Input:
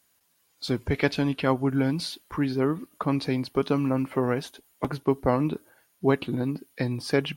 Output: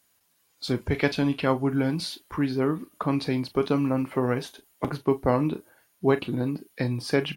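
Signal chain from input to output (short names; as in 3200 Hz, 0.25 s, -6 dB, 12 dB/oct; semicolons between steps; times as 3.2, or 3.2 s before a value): early reflections 32 ms -14.5 dB, 42 ms -15.5 dB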